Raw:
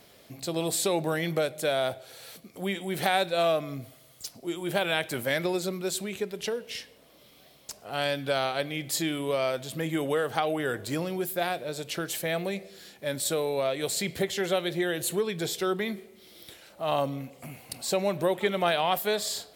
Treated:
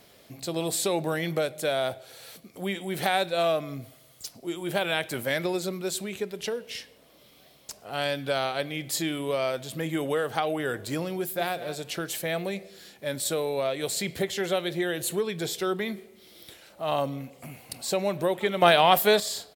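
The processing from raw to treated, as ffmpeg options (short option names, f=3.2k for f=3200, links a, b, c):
-filter_complex "[0:a]asplit=2[a][b];[b]afade=t=in:st=11.15:d=0.01,afade=t=out:st=11.55:d=0.01,aecho=0:1:200|400:0.223872|0.0335808[c];[a][c]amix=inputs=2:normalize=0,asplit=3[d][e][f];[d]atrim=end=18.622[g];[e]atrim=start=18.618:end=19.202,asetpts=PTS-STARTPTS,volume=7dB[h];[f]atrim=start=19.198[i];[g][h]acrossfade=d=0.004:c1=hsin:c2=hsin[j];[j][i]acrossfade=d=0.004:c1=hsin:c2=hsin"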